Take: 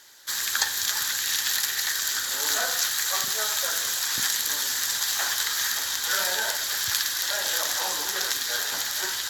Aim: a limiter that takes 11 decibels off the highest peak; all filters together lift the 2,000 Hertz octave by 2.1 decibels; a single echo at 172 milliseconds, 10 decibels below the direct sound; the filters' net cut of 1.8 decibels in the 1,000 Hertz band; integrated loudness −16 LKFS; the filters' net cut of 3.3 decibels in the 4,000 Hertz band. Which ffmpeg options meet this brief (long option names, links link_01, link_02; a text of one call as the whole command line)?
ffmpeg -i in.wav -af "equalizer=frequency=1000:width_type=o:gain=-4,equalizer=frequency=2000:width_type=o:gain=5,equalizer=frequency=4000:width_type=o:gain=-5,alimiter=limit=-15dB:level=0:latency=1,aecho=1:1:172:0.316,volume=9.5dB" out.wav